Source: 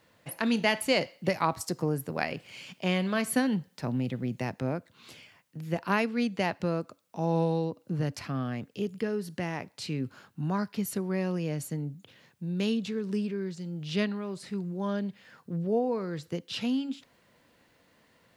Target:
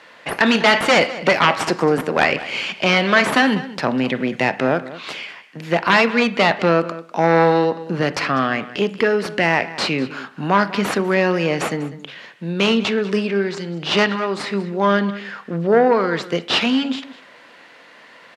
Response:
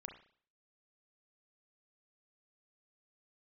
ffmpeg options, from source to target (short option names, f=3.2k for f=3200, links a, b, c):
-filter_complex "[0:a]lowshelf=f=310:g=-10.5,aeval=exprs='0.251*sin(PI/2*3.55*val(0)/0.251)':c=same,crystalizer=i=7:c=0,aeval=exprs='(tanh(2.51*val(0)+0.65)-tanh(0.65))/2.51':c=same,highpass=190,lowpass=2k,asplit=2[a][b];[b]adelay=198.3,volume=-16dB,highshelf=f=4k:g=-4.46[c];[a][c]amix=inputs=2:normalize=0,asplit=2[d][e];[1:a]atrim=start_sample=2205[f];[e][f]afir=irnorm=-1:irlink=0,volume=-0.5dB[g];[d][g]amix=inputs=2:normalize=0,volume=3dB"